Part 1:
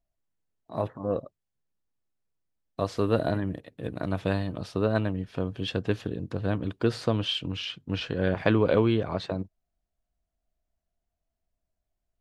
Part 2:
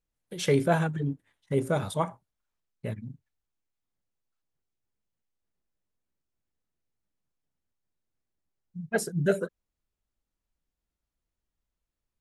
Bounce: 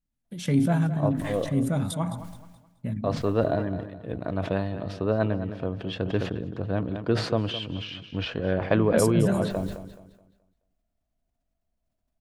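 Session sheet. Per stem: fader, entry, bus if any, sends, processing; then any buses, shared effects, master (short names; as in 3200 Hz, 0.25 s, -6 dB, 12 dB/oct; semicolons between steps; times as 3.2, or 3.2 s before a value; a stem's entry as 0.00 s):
-0.5 dB, 0.25 s, no send, echo send -12.5 dB, LPF 2300 Hz 6 dB/oct
-5.5 dB, 0.00 s, no send, echo send -13.5 dB, resonant low shelf 320 Hz +7 dB, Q 3; sustainer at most 61 dB/s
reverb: off
echo: feedback echo 0.213 s, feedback 33%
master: bell 640 Hz +3.5 dB 0.5 oct; sustainer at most 84 dB/s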